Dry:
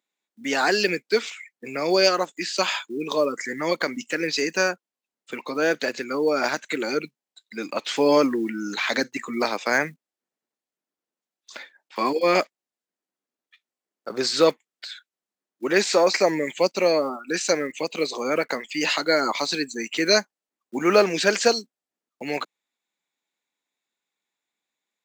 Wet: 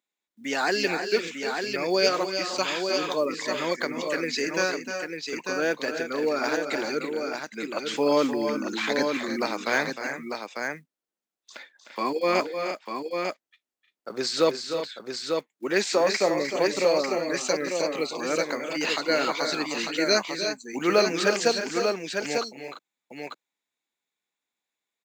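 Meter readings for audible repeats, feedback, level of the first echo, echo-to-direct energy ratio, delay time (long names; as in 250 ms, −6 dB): 3, repeats not evenly spaced, −9.0 dB, −3.0 dB, 306 ms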